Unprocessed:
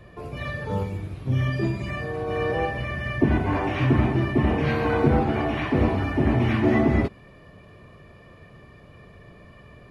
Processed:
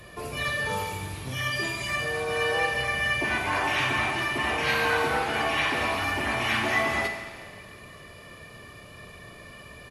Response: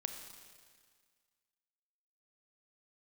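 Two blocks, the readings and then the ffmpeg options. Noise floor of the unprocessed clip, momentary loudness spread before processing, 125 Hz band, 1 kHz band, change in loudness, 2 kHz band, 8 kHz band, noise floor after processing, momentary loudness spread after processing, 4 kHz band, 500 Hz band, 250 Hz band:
-49 dBFS, 9 LU, -13.0 dB, +1.5 dB, -2.0 dB, +6.5 dB, n/a, -47 dBFS, 21 LU, +10.0 dB, -4.5 dB, -13.0 dB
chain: -filter_complex "[0:a]lowshelf=f=480:g=-6,acrossover=split=630[a][b];[a]acompressor=threshold=-38dB:ratio=6[c];[c][b]amix=inputs=2:normalize=0,crystalizer=i=3.5:c=0,asplit=2[d][e];[e]volume=31.5dB,asoftclip=hard,volume=-31.5dB,volume=-10dB[f];[d][f]amix=inputs=2:normalize=0[g];[1:a]atrim=start_sample=2205[h];[g][h]afir=irnorm=-1:irlink=0,aresample=32000,aresample=44100,volume=2.5dB"

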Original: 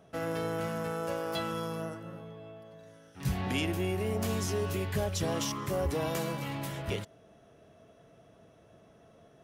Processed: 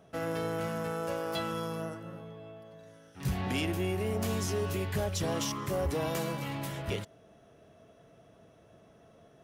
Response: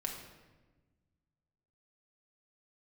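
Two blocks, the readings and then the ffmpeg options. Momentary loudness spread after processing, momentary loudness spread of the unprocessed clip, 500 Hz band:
15 LU, 15 LU, 0.0 dB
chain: -af "volume=24.5dB,asoftclip=hard,volume=-24.5dB"

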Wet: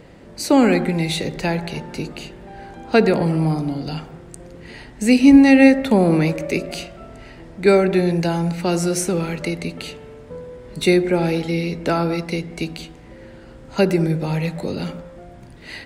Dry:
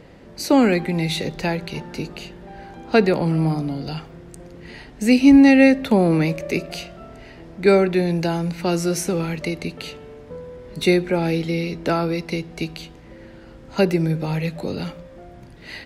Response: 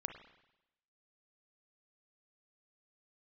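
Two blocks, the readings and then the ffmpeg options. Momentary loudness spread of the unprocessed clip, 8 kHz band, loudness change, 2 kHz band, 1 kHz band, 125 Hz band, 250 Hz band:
20 LU, +3.0 dB, +1.5 dB, +1.0 dB, +1.5 dB, +1.5 dB, +1.5 dB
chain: -filter_complex "[0:a]aexciter=amount=1.7:drive=3.1:freq=7.5k,asplit=2[a][b];[1:a]atrim=start_sample=2205,atrim=end_sample=6615,asetrate=24255,aresample=44100[c];[b][c]afir=irnorm=-1:irlink=0,volume=-0.5dB[d];[a][d]amix=inputs=2:normalize=0,volume=-5dB"

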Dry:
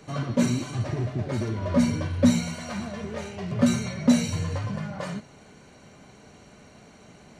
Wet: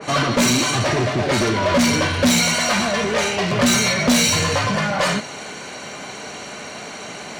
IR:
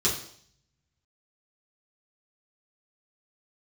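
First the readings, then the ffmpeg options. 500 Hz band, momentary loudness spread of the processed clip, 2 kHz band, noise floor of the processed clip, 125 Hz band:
+11.0 dB, 16 LU, +18.0 dB, -34 dBFS, +3.5 dB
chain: -filter_complex "[0:a]asplit=2[a][b];[b]highpass=f=720:p=1,volume=28dB,asoftclip=type=tanh:threshold=-9dB[c];[a][c]amix=inputs=2:normalize=0,lowpass=f=7.5k:p=1,volume=-6dB,adynamicequalizer=threshold=0.0158:dfrequency=2300:dqfactor=0.7:tfrequency=2300:tqfactor=0.7:attack=5:release=100:ratio=0.375:range=1.5:mode=boostabove:tftype=highshelf"

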